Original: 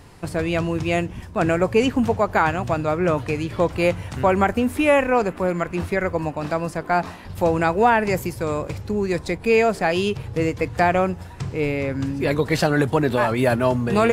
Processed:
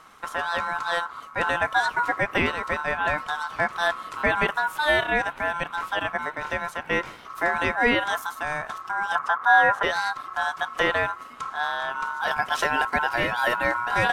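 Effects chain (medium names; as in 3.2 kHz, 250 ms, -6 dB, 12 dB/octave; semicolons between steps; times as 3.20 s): 9.15–9.83 s: tilt shelf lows +9.5 dB, about 860 Hz; ring modulator 1.2 kHz; trim -2 dB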